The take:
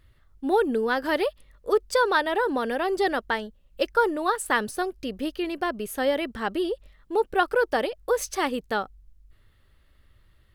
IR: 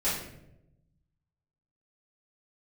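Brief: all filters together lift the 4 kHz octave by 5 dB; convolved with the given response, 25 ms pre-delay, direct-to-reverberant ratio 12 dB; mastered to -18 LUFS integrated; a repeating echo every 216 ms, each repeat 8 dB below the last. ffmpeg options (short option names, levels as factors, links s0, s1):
-filter_complex "[0:a]equalizer=f=4000:t=o:g=6.5,aecho=1:1:216|432|648|864|1080:0.398|0.159|0.0637|0.0255|0.0102,asplit=2[s0][s1];[1:a]atrim=start_sample=2205,adelay=25[s2];[s1][s2]afir=irnorm=-1:irlink=0,volume=0.0841[s3];[s0][s3]amix=inputs=2:normalize=0,volume=2.11"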